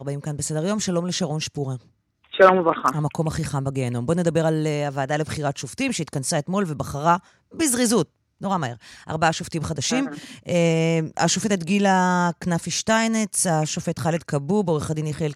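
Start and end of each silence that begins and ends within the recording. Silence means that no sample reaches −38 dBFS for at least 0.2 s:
0:01.77–0:02.33
0:07.19–0:07.54
0:08.04–0:08.41

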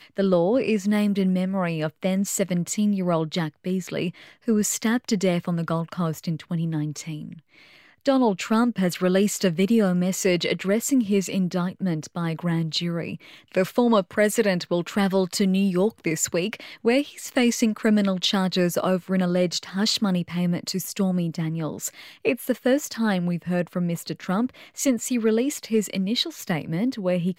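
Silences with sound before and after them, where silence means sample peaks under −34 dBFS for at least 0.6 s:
0:07.33–0:08.06

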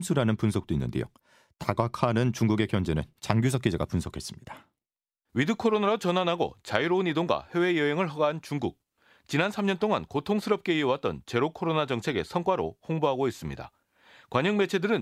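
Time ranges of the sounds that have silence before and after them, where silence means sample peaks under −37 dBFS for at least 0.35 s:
0:01.61–0:04.57
0:05.35–0:08.69
0:09.29–0:13.66

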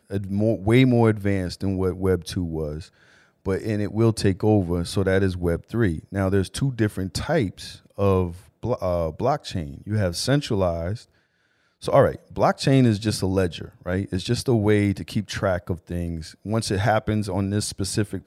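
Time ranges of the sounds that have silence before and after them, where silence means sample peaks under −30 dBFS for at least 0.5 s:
0:03.46–0:10.96

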